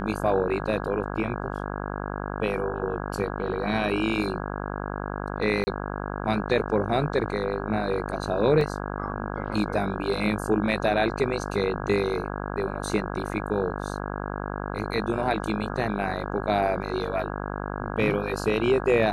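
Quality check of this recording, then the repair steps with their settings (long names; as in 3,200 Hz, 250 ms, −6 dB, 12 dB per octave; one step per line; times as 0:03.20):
mains buzz 50 Hz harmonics 33 −32 dBFS
0:05.64–0:05.67: drop-out 30 ms
0:08.61: drop-out 2.5 ms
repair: hum removal 50 Hz, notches 33
repair the gap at 0:05.64, 30 ms
repair the gap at 0:08.61, 2.5 ms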